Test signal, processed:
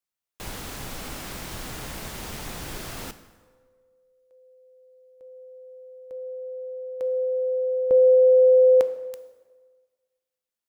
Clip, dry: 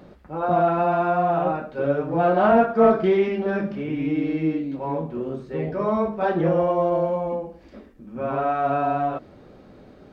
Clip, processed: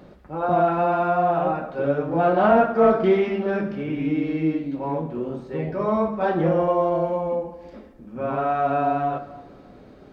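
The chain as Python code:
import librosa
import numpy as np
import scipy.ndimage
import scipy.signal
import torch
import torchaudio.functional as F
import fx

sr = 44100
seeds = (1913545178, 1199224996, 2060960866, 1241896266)

y = fx.rev_plate(x, sr, seeds[0], rt60_s=1.5, hf_ratio=0.7, predelay_ms=0, drr_db=10.5)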